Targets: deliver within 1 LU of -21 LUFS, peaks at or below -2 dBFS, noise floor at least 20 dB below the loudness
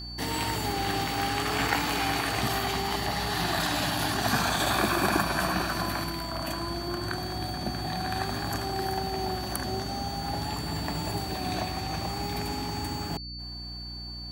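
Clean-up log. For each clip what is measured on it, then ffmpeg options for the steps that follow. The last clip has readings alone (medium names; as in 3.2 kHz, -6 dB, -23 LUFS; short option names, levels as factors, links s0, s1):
hum 60 Hz; highest harmonic 300 Hz; hum level -39 dBFS; steady tone 4.5 kHz; tone level -39 dBFS; loudness -29.5 LUFS; peak level -10.0 dBFS; loudness target -21.0 LUFS
-> -af "bandreject=f=60:t=h:w=6,bandreject=f=120:t=h:w=6,bandreject=f=180:t=h:w=6,bandreject=f=240:t=h:w=6,bandreject=f=300:t=h:w=6"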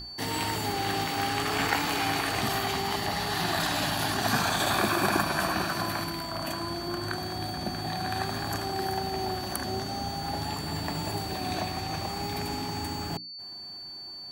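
hum not found; steady tone 4.5 kHz; tone level -39 dBFS
-> -af "bandreject=f=4500:w=30"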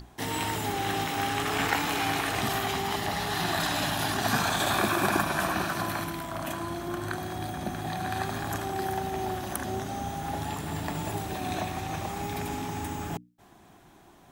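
steady tone not found; loudness -30.0 LUFS; peak level -10.0 dBFS; loudness target -21.0 LUFS
-> -af "volume=2.82,alimiter=limit=0.794:level=0:latency=1"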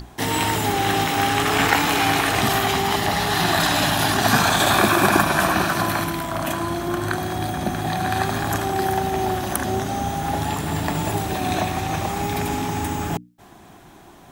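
loudness -21.0 LUFS; peak level -2.0 dBFS; noise floor -46 dBFS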